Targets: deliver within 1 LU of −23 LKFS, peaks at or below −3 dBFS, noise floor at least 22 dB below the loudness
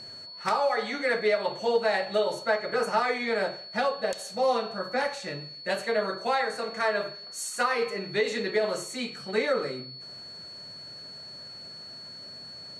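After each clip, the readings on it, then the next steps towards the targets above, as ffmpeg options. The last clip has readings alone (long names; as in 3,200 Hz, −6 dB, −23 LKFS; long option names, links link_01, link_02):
interfering tone 4,400 Hz; level of the tone −41 dBFS; integrated loudness −28.0 LKFS; sample peak −13.5 dBFS; target loudness −23.0 LKFS
→ -af "bandreject=frequency=4400:width=30"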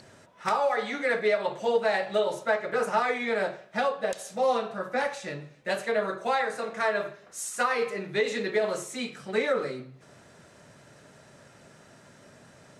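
interfering tone none found; integrated loudness −28.5 LKFS; sample peak −14.0 dBFS; target loudness −23.0 LKFS
→ -af "volume=5.5dB"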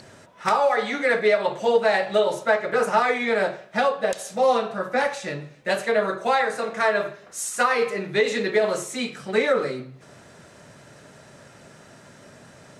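integrated loudness −23.0 LKFS; sample peak −8.5 dBFS; background noise floor −49 dBFS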